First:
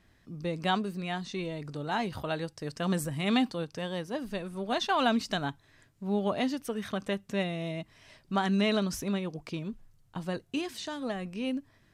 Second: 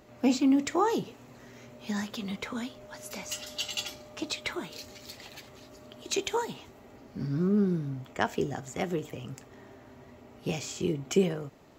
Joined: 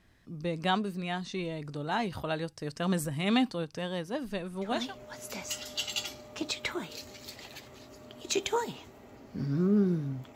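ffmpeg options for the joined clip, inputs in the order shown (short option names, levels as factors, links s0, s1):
-filter_complex "[0:a]apad=whole_dur=10.35,atrim=end=10.35,atrim=end=4.95,asetpts=PTS-STARTPTS[s0];[1:a]atrim=start=2.4:end=8.16,asetpts=PTS-STARTPTS[s1];[s0][s1]acrossfade=d=0.36:c1=qsin:c2=qsin"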